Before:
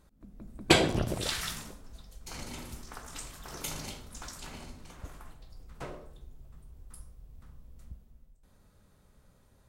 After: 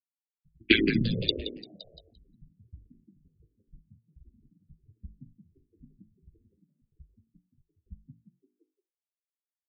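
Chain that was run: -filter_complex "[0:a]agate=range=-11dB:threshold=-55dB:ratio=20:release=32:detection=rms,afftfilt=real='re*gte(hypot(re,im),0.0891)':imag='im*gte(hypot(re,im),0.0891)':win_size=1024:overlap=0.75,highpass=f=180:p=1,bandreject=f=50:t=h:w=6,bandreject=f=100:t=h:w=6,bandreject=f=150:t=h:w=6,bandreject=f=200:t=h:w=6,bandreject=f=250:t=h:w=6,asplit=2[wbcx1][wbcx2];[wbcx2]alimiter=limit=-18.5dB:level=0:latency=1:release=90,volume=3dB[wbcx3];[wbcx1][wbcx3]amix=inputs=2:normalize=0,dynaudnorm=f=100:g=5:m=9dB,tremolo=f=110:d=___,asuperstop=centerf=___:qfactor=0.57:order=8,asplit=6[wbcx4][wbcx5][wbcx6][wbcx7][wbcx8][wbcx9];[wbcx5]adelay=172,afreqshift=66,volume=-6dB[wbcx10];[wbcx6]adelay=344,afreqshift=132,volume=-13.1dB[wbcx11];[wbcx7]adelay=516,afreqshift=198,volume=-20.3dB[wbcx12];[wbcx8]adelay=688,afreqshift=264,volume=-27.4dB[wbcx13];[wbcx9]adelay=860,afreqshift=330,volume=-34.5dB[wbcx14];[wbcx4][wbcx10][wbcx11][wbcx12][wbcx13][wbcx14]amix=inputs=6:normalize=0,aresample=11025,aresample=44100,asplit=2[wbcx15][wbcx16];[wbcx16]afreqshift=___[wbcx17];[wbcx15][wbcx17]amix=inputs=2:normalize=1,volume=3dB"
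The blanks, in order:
0.947, 770, -1.4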